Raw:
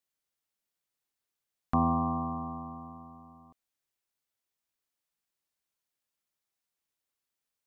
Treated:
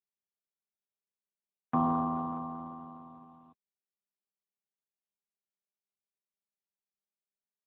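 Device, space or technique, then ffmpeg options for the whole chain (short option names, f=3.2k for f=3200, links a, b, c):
mobile call with aggressive noise cancelling: -af "highpass=170,afftdn=nr=19:nf=-61" -ar 8000 -c:a libopencore_amrnb -b:a 12200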